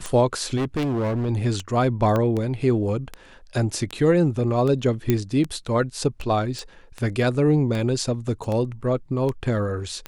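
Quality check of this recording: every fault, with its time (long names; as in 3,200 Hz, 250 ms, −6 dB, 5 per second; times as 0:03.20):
scratch tick 78 rpm −16 dBFS
0:00.56–0:01.30: clipping −21 dBFS
0:02.16: click −12 dBFS
0:05.10: click −7 dBFS
0:06.59: click
0:08.44: drop-out 2.1 ms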